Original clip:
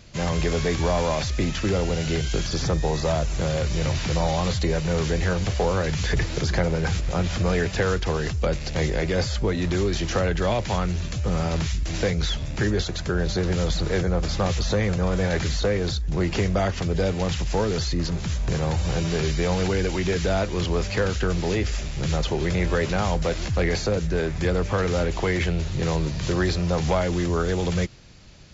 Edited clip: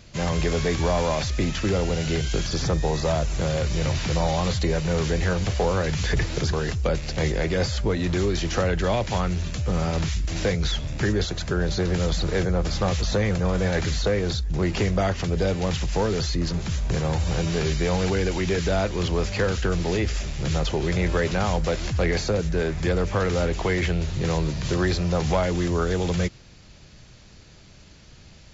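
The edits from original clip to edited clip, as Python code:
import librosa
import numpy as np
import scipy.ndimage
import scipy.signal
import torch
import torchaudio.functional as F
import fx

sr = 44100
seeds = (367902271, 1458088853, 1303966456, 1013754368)

y = fx.edit(x, sr, fx.cut(start_s=6.53, length_s=1.58), tone=tone)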